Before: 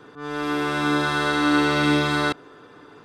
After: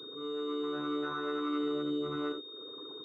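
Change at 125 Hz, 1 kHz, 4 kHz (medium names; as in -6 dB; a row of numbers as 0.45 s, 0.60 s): -21.5 dB, -16.0 dB, -12.0 dB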